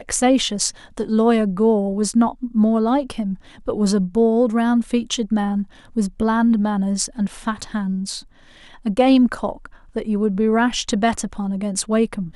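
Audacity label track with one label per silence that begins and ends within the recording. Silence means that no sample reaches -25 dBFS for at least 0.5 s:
8.190000	8.860000	silence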